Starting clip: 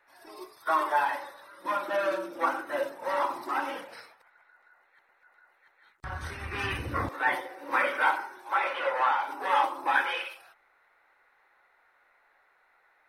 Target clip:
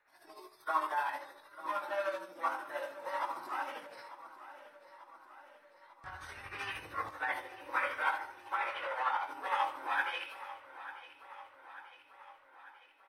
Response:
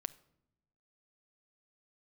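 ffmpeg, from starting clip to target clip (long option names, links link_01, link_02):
-filter_complex "[0:a]flanger=delay=19.5:depth=3.3:speed=0.58,acrossover=split=500|6500[link_01][link_02][link_03];[link_01]acompressor=threshold=-51dB:ratio=6[link_04];[link_04][link_02][link_03]amix=inputs=3:normalize=0[link_05];[1:a]atrim=start_sample=2205[link_06];[link_05][link_06]afir=irnorm=-1:irlink=0,tremolo=f=13:d=0.46,aecho=1:1:893|1786|2679|3572|4465|5358:0.178|0.107|0.064|0.0384|0.023|0.0138"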